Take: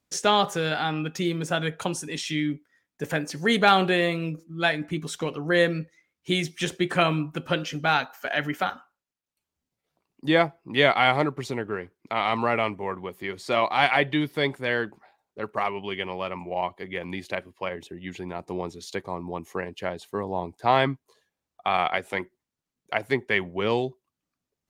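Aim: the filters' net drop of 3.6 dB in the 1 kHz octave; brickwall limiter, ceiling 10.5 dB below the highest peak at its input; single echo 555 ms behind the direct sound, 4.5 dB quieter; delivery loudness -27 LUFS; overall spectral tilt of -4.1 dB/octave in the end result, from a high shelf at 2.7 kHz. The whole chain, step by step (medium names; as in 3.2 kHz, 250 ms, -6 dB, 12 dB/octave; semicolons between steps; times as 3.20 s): peaking EQ 1 kHz -6 dB; treble shelf 2.7 kHz +4.5 dB; peak limiter -15 dBFS; delay 555 ms -4.5 dB; trim +1.5 dB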